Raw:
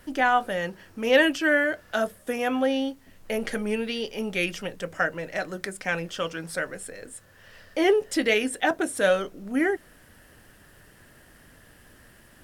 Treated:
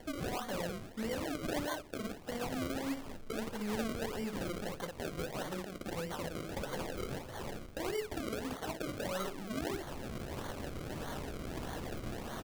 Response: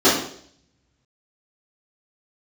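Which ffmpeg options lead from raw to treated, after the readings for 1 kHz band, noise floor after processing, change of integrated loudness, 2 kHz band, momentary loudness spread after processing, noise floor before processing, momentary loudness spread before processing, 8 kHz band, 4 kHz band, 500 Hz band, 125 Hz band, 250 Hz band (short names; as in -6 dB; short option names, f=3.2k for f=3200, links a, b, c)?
-13.0 dB, -49 dBFS, -14.0 dB, -18.0 dB, 5 LU, -54 dBFS, 12 LU, -8.0 dB, -11.5 dB, -13.5 dB, -0.5 dB, -10.0 dB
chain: -filter_complex "[0:a]areverse,acompressor=threshold=-40dB:ratio=4,areverse,bandreject=f=50:t=h:w=6,bandreject=f=100:t=h:w=6,bandreject=f=150:t=h:w=6,bandreject=f=200:t=h:w=6,bandreject=f=250:t=h:w=6,bandreject=f=300:t=h:w=6,bandreject=f=350:t=h:w=6,acrossover=split=180|1100[a][b][c];[a]acompressor=threshold=-55dB:ratio=4[d];[b]acompressor=threshold=-53dB:ratio=4[e];[c]acompressor=threshold=-51dB:ratio=4[f];[d][e][f]amix=inputs=3:normalize=0,alimiter=level_in=16dB:limit=-24dB:level=0:latency=1:release=197,volume=-16dB,asplit=2[g][h];[h]aecho=0:1:14|58:0.376|0.501[i];[g][i]amix=inputs=2:normalize=0,acrusher=samples=34:mix=1:aa=0.000001:lfo=1:lforange=34:lforate=1.6,volume=11.5dB"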